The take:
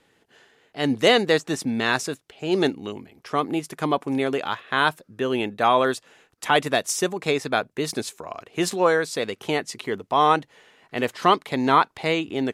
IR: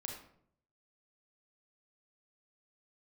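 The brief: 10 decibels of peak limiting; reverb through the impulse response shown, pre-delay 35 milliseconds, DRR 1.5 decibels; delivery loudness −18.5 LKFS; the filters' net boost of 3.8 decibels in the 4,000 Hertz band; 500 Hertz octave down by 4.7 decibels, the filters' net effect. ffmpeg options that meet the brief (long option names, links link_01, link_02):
-filter_complex "[0:a]equalizer=frequency=500:width_type=o:gain=-6,equalizer=frequency=4000:width_type=o:gain=5,alimiter=limit=-14.5dB:level=0:latency=1,asplit=2[link_01][link_02];[1:a]atrim=start_sample=2205,adelay=35[link_03];[link_02][link_03]afir=irnorm=-1:irlink=0,volume=0dB[link_04];[link_01][link_04]amix=inputs=2:normalize=0,volume=7dB"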